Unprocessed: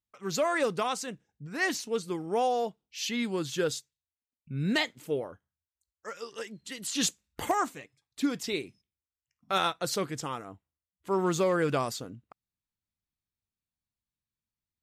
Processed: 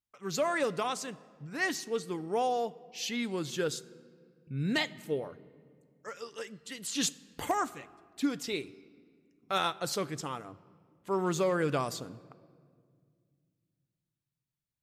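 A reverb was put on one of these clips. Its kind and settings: shoebox room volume 3900 m³, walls mixed, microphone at 0.33 m; gain -2.5 dB

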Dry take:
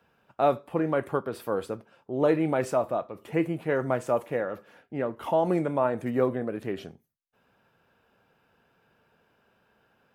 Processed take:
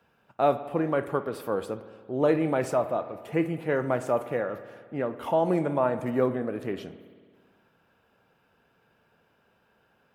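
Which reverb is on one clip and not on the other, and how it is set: spring tank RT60 1.8 s, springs 55 ms, chirp 20 ms, DRR 12 dB

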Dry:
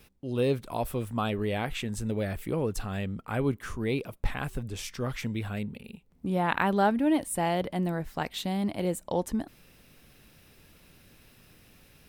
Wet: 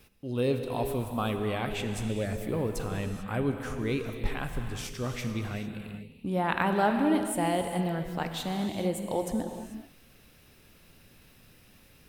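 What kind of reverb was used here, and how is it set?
non-linear reverb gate 0.47 s flat, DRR 5 dB; gain -1.5 dB

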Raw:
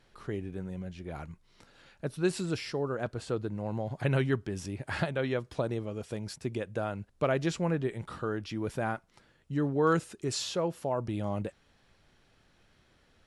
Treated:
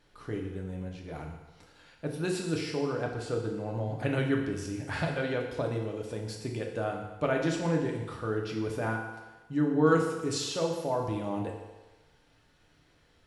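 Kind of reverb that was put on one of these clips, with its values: FDN reverb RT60 1.2 s, low-frequency decay 0.75×, high-frequency decay 0.95×, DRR 0 dB; gain -2 dB

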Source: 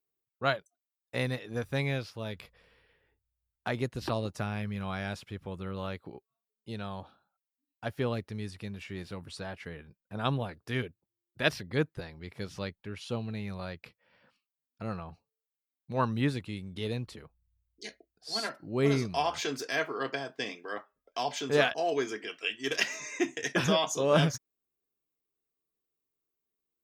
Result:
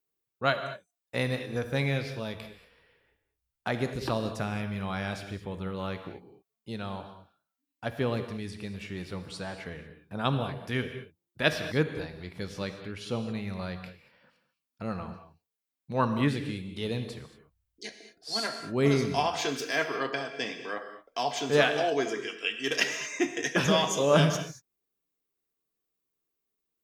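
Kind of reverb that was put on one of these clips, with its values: non-linear reverb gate 0.25 s flat, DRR 7.5 dB; gain +2 dB

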